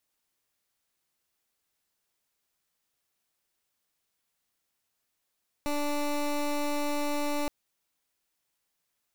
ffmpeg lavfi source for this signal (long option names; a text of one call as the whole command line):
ffmpeg -f lavfi -i "aevalsrc='0.0355*(2*lt(mod(292*t,1),0.18)-1)':duration=1.82:sample_rate=44100" out.wav